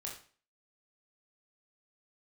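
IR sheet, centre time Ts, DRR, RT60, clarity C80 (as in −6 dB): 29 ms, −2.5 dB, 0.40 s, 11.5 dB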